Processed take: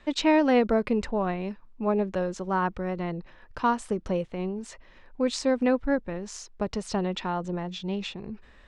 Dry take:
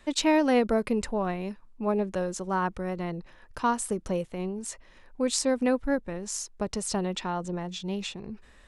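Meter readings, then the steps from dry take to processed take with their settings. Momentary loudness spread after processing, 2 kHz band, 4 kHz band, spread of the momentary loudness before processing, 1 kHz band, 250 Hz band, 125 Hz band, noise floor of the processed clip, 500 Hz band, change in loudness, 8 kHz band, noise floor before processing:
14 LU, +1.5 dB, -1.0 dB, 13 LU, +1.5 dB, +1.5 dB, +1.5 dB, -54 dBFS, +1.5 dB, +1.0 dB, -8.5 dB, -55 dBFS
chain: low-pass 4.3 kHz 12 dB/octave; trim +1.5 dB

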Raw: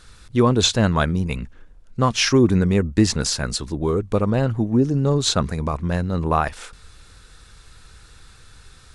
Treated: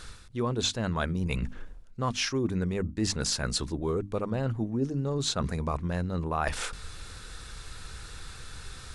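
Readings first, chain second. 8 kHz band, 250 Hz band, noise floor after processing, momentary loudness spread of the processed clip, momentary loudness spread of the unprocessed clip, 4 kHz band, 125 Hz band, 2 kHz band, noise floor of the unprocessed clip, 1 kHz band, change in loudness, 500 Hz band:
-8.0 dB, -11.0 dB, -46 dBFS, 15 LU, 10 LU, -8.5 dB, -10.0 dB, -8.0 dB, -48 dBFS, -9.5 dB, -10.0 dB, -10.5 dB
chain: reverse; compression 5:1, threshold -32 dBFS, peak gain reduction 19 dB; reverse; hum notches 50/100/150/200/250/300 Hz; trim +4.5 dB

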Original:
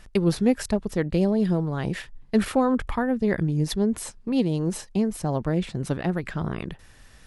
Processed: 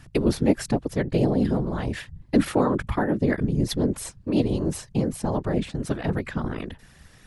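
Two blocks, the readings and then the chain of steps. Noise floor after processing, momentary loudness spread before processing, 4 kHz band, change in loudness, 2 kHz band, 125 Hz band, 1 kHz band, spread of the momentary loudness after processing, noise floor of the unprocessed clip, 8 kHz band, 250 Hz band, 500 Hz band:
-53 dBFS, 8 LU, +0.5 dB, 0.0 dB, 0.0 dB, +0.5 dB, 0.0 dB, 8 LU, -51 dBFS, 0.0 dB, 0.0 dB, 0.0 dB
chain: whisper effect

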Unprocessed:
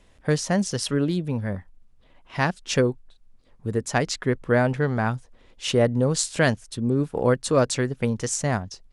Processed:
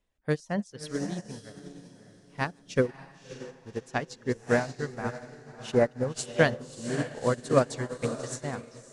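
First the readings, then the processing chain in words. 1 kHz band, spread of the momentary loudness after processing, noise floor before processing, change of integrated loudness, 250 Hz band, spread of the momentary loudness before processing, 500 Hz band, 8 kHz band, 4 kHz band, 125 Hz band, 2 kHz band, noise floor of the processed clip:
-5.5 dB, 19 LU, -56 dBFS, -6.0 dB, -7.5 dB, 8 LU, -4.5 dB, -11.5 dB, -10.5 dB, -9.0 dB, -4.5 dB, -57 dBFS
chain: chunks repeated in reverse 114 ms, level -12 dB; peaking EQ 89 Hz -3 dB 1.2 oct; reverb removal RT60 0.97 s; echo that smears into a reverb 598 ms, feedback 49%, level -4 dB; upward expansion 2.5:1, over -30 dBFS

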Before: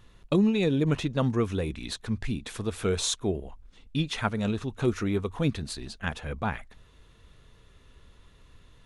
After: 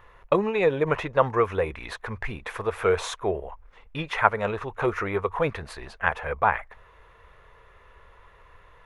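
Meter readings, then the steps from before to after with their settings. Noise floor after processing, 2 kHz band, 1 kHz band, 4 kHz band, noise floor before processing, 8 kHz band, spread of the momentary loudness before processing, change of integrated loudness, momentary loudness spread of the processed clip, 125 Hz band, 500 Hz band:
-55 dBFS, +8.5 dB, +11.5 dB, -4.5 dB, -57 dBFS, -8.5 dB, 10 LU, +2.5 dB, 12 LU, -5.0 dB, +6.0 dB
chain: graphic EQ 125/250/500/1000/2000/4000/8000 Hz -3/-12/+9/+11/+9/-7/-9 dB

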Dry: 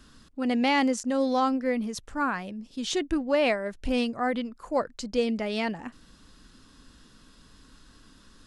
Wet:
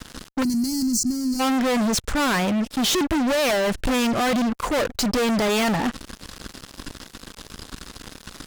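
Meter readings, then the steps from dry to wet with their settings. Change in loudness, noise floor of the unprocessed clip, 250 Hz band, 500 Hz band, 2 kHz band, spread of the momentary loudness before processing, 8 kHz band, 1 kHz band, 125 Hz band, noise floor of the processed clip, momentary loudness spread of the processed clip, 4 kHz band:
+5.5 dB, -56 dBFS, +6.0 dB, +3.5 dB, +5.5 dB, 10 LU, +14.0 dB, +4.0 dB, +12.5 dB, -49 dBFS, 19 LU, +9.0 dB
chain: fuzz box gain 44 dB, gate -51 dBFS; time-frequency box 0.43–1.40 s, 370–4100 Hz -26 dB; trim -6.5 dB

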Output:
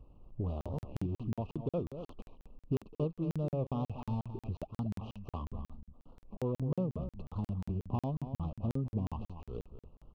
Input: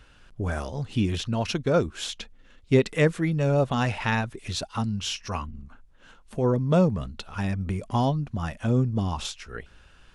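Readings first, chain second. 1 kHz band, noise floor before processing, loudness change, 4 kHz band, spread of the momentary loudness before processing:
-15.0 dB, -55 dBFS, -12.0 dB, under -25 dB, 12 LU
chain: median filter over 25 samples; elliptic band-stop 1.2–2.6 kHz, stop band 40 dB; dynamic bell 4.1 kHz, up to +4 dB, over -50 dBFS, Q 0.71; compression 2.5:1, threshold -34 dBFS, peak gain reduction 13 dB; tape spacing loss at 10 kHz 41 dB; echo from a far wall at 41 m, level -10 dB; crackling interface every 0.18 s, samples 2048, zero, from 0.61 s; warped record 45 rpm, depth 100 cents

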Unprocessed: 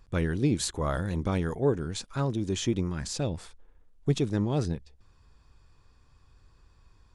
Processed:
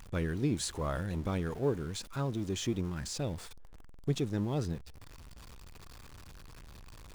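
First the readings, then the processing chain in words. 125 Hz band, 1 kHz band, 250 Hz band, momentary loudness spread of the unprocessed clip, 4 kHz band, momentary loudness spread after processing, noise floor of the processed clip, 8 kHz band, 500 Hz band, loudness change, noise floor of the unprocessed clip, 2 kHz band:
-5.0 dB, -5.0 dB, -5.5 dB, 7 LU, -4.5 dB, 21 LU, -50 dBFS, -4.5 dB, -5.5 dB, -5.0 dB, -61 dBFS, -4.5 dB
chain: jump at every zero crossing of -39.5 dBFS; trim -6 dB

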